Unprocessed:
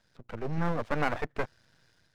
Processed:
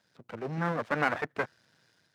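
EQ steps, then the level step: dynamic EQ 1600 Hz, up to +5 dB, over -44 dBFS, Q 1.7; HPF 140 Hz 12 dB/oct; 0.0 dB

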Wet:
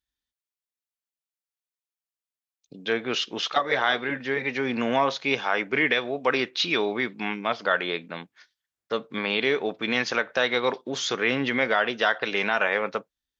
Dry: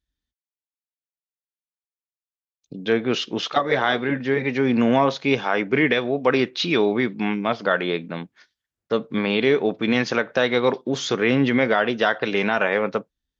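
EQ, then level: low shelf 460 Hz -12 dB; 0.0 dB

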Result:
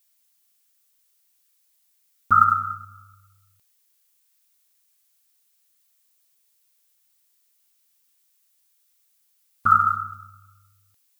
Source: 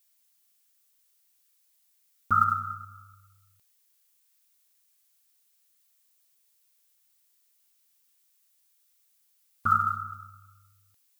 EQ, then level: dynamic EQ 1200 Hz, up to +5 dB, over -34 dBFS, Q 0.91; +2.0 dB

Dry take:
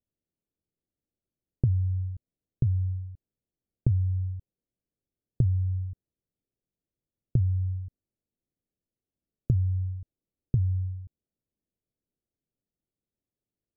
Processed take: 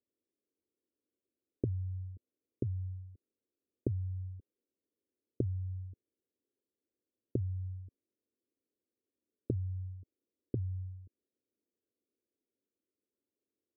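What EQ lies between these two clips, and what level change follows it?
HPF 170 Hz 12 dB/oct; Chebyshev low-pass 520 Hz, order 2; fixed phaser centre 380 Hz, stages 4; +5.5 dB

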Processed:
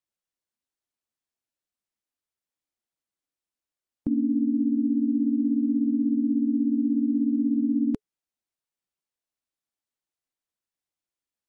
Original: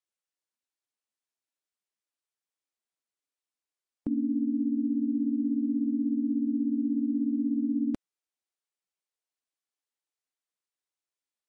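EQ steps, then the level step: low shelf 430 Hz +8 dB; notch 430 Hz; -1.5 dB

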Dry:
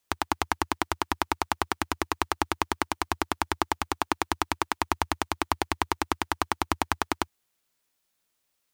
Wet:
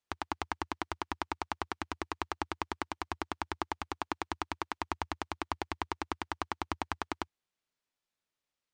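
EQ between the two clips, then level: air absorption 91 m; high shelf 11000 Hz +7 dB; -8.5 dB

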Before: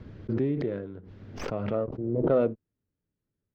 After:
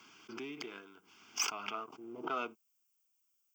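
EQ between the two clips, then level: HPF 310 Hz 12 dB/oct; differentiator; fixed phaser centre 2700 Hz, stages 8; +18.0 dB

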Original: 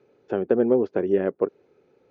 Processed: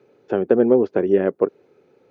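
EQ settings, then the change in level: HPF 84 Hz; +4.5 dB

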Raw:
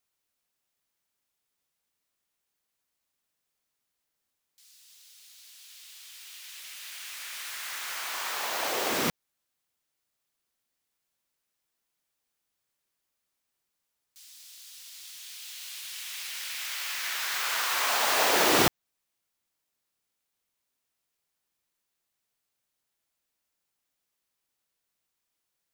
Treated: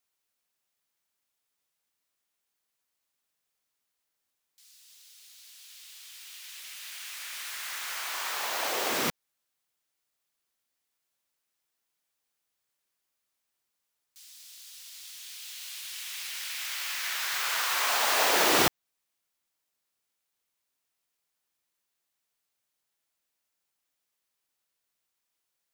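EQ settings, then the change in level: low shelf 340 Hz -5 dB; 0.0 dB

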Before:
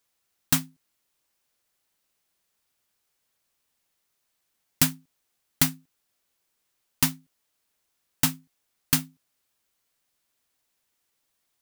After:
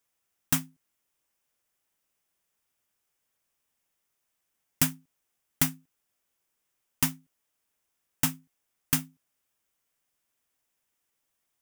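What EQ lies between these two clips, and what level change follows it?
bell 4200 Hz -8 dB 0.36 oct; -3.0 dB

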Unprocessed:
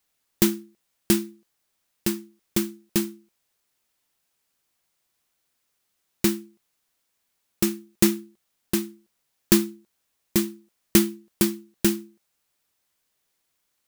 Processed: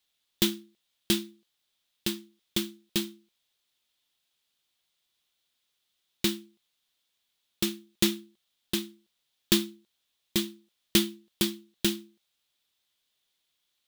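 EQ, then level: bell 3500 Hz +14 dB 0.79 oct; -7.0 dB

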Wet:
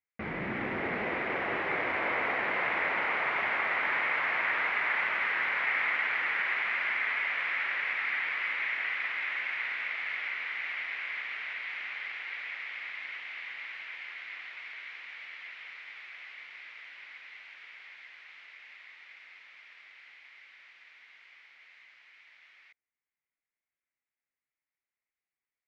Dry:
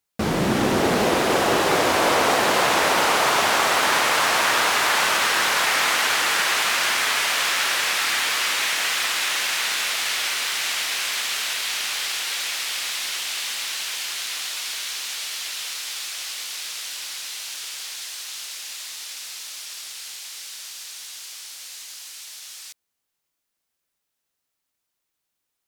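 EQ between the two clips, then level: ladder low-pass 2300 Hz, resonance 70%; -4.0 dB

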